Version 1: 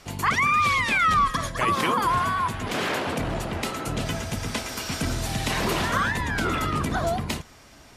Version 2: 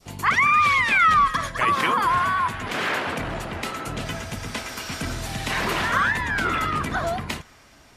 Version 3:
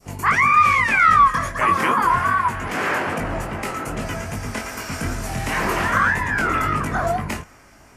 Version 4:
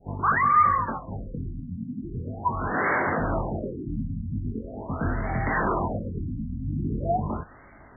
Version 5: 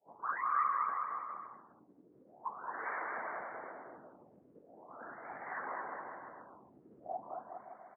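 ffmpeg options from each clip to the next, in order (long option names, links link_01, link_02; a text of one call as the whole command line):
ffmpeg -i in.wav -af "adynamicequalizer=threshold=0.0158:dfrequency=1700:dqfactor=0.71:tfrequency=1700:tqfactor=0.71:attack=5:release=100:ratio=0.375:range=4:mode=boostabove:tftype=bell,volume=-3dB" out.wav
ffmpeg -i in.wav -af "equalizer=frequency=3700:width_type=o:width=0.69:gain=-12.5,flanger=delay=19:depth=4.1:speed=2.5,acontrast=80" out.wav
ffmpeg -i in.wav -filter_complex "[0:a]asplit=2[link_01][link_02];[link_02]alimiter=limit=-16dB:level=0:latency=1:release=67,volume=1.5dB[link_03];[link_01][link_03]amix=inputs=2:normalize=0,afftfilt=real='re*lt(b*sr/1024,280*pow(2300/280,0.5+0.5*sin(2*PI*0.42*pts/sr)))':imag='im*lt(b*sr/1024,280*pow(2300/280,0.5+0.5*sin(2*PI*0.42*pts/sr)))':win_size=1024:overlap=0.75,volume=-7dB" out.wav
ffmpeg -i in.wav -af "afftfilt=real='hypot(re,im)*cos(2*PI*random(0))':imag='hypot(re,im)*sin(2*PI*random(1))':win_size=512:overlap=0.75,highpass=650,lowpass=2000,aecho=1:1:220|407|566|701.1|815.9:0.631|0.398|0.251|0.158|0.1,volume=-8dB" out.wav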